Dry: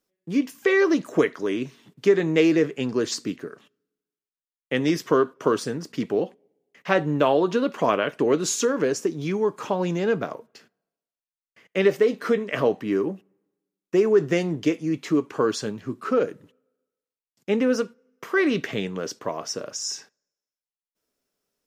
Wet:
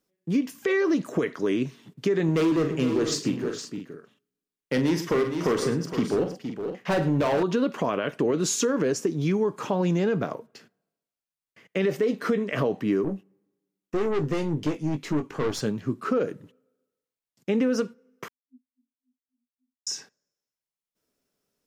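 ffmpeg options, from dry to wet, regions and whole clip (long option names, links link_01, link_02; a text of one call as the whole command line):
ffmpeg -i in.wav -filter_complex "[0:a]asettb=1/sr,asplit=3[link_01][link_02][link_03];[link_01]atrim=end=2.244[link_04];[link_02]atrim=start=2.24:end=7.43,asetpts=PTS-STARTPTS,afade=type=in:duration=0.004:curve=qsin,afade=type=out:start_time=5.186:duration=0.004:curve=qsin,asoftclip=type=hard:threshold=-19.5dB,aecho=1:1:43|108|464|510:0.355|0.188|0.316|0.211,atrim=end_sample=228879[link_05];[link_03]atrim=start=7.426[link_06];[link_04][link_05]acrossfade=duration=0.004:curve1=hsin:curve2=qsin[link_07];[link_07][link_06]acrossfade=duration=0.004:curve1=qsin:curve2=hsin,asettb=1/sr,asplit=3[link_08][link_09][link_10];[link_08]atrim=end=13.044[link_11];[link_09]atrim=start=13.04:end=15.61,asetpts=PTS-STARTPTS,afade=type=in:duration=0.004:curve=qsin,afade=type=out:start_time=2.566:duration=0.004:curve=qsin,aeval=exprs='(tanh(15.8*val(0)+0.55)-tanh(0.55))/15.8':channel_layout=same,asplit=2[link_12][link_13];[link_13]adelay=20,volume=-9dB[link_14];[link_12][link_14]amix=inputs=2:normalize=0,atrim=end_sample=113337[link_15];[link_10]atrim=start=15.606[link_16];[link_11][link_15]acrossfade=duration=0.004:curve1=hsin:curve2=qsin[link_17];[link_17][link_16]acrossfade=duration=0.004:curve1=qsin:curve2=hsin,asettb=1/sr,asplit=3[link_18][link_19][link_20];[link_18]atrim=end=18.284[link_21];[link_19]atrim=start=18.28:end=19.87,asetpts=PTS-STARTPTS,afade=type=in:duration=0.004:curve=qsin,afade=type=out:start_time=1.586:duration=0.004:curve=qsin,asuperpass=centerf=250:order=12:qfactor=7.8,aderivative,aeval=exprs='val(0)*pow(10,-31*(0.5-0.5*cos(2*PI*3.6*n/s))/20)':channel_layout=same[link_22];[link_20]atrim=start=19.866[link_23];[link_21][link_22]acrossfade=duration=0.004:curve1=hsin:curve2=qsin[link_24];[link_24][link_23]acrossfade=duration=0.004:curve1=qsin:curve2=hsin,alimiter=limit=-15.5dB:level=0:latency=1:release=46,equalizer=frequency=140:width_type=o:width=2.2:gain=5.5,acompressor=threshold=-19dB:ratio=6" out.wav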